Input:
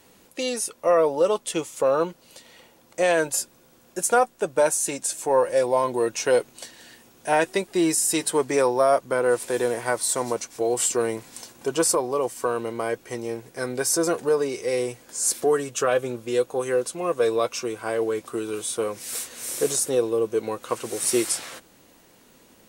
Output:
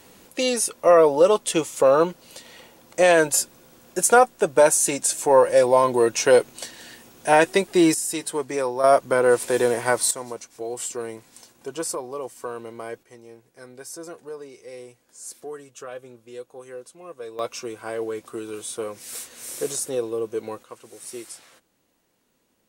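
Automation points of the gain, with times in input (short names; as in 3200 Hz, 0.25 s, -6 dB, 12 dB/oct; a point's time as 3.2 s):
+4.5 dB
from 7.94 s -4.5 dB
from 8.84 s +3.5 dB
from 10.11 s -7.5 dB
from 13.03 s -15 dB
from 17.39 s -4 dB
from 20.63 s -14.5 dB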